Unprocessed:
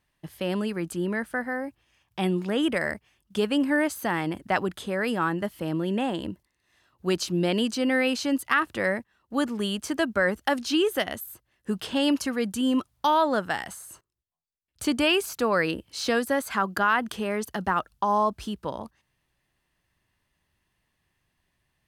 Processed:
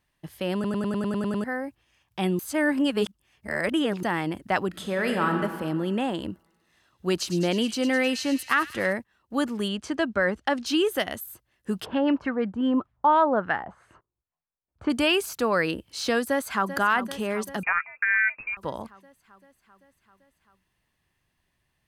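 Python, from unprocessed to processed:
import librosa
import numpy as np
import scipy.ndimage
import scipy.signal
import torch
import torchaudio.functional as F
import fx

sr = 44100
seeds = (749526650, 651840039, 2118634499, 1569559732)

y = fx.reverb_throw(x, sr, start_s=4.68, length_s=0.69, rt60_s=1.7, drr_db=3.0)
y = fx.echo_wet_highpass(y, sr, ms=104, feedback_pct=75, hz=3000.0, wet_db=-9.5, at=(6.29, 8.93))
y = fx.air_absorb(y, sr, metres=79.0, at=(9.68, 10.66))
y = fx.filter_lfo_lowpass(y, sr, shape='sine', hz=fx.line((11.84, 7.3), (14.89, 1.3)), low_hz=830.0, high_hz=2100.0, q=1.5, at=(11.84, 14.89), fade=0.02)
y = fx.echo_throw(y, sr, start_s=16.27, length_s=0.48, ms=390, feedback_pct=70, wet_db=-11.5)
y = fx.freq_invert(y, sr, carrier_hz=2600, at=(17.63, 18.57))
y = fx.edit(y, sr, fx.stutter_over(start_s=0.54, slice_s=0.1, count=9),
    fx.reverse_span(start_s=2.39, length_s=1.64), tone=tone)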